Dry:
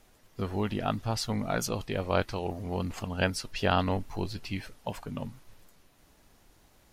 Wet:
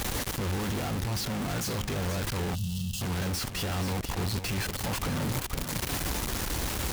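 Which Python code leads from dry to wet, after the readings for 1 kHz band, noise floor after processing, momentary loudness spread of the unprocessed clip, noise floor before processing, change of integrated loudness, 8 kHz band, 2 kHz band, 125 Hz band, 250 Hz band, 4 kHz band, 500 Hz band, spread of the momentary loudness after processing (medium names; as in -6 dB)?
-2.0 dB, -37 dBFS, 11 LU, -62 dBFS, +1.0 dB, +8.5 dB, +1.5 dB, +4.0 dB, +1.0 dB, +4.5 dB, -3.5 dB, 1 LU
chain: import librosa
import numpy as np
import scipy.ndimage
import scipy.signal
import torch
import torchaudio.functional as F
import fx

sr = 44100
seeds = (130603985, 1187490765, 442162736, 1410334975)

p1 = np.sign(x) * np.sqrt(np.mean(np.square(x)))
p2 = scipy.signal.sosfilt(scipy.signal.butter(2, 45.0, 'highpass', fs=sr, output='sos'), p1)
p3 = fx.low_shelf(p2, sr, hz=85.0, db=9.5)
p4 = p3 + fx.echo_feedback(p3, sr, ms=481, feedback_pct=18, wet_db=-10.0, dry=0)
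p5 = fx.rider(p4, sr, range_db=10, speed_s=0.5)
p6 = fx.notch(p5, sr, hz=640.0, q=12.0)
p7 = fx.spec_box(p6, sr, start_s=2.55, length_s=0.46, low_hz=230.0, high_hz=2600.0, gain_db=-25)
y = p7 * librosa.db_to_amplitude(1.0)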